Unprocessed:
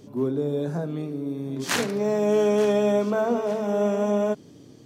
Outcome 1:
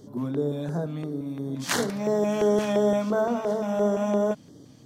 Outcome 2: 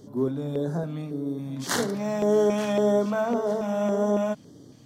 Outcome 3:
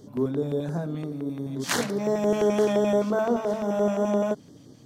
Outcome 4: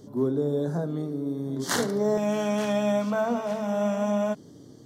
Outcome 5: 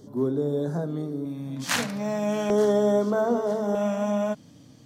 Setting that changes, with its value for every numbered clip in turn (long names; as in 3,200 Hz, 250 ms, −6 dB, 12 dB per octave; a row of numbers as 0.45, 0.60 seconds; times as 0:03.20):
auto-filter notch, speed: 2.9, 1.8, 5.8, 0.23, 0.4 Hertz